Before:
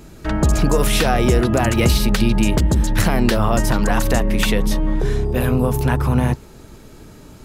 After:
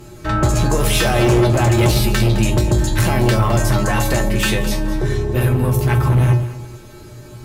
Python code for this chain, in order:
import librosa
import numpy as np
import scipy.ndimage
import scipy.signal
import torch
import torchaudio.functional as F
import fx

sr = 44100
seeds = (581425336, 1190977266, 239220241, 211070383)

y = fx.comb_fb(x, sr, f0_hz=120.0, decay_s=0.28, harmonics='odd', damping=0.0, mix_pct=90)
y = fx.fold_sine(y, sr, drive_db=14, ceiling_db=-7.0)
y = fx.echo_alternate(y, sr, ms=106, hz=920.0, feedback_pct=54, wet_db=-8.0)
y = y * librosa.db_to_amplitude(-3.0)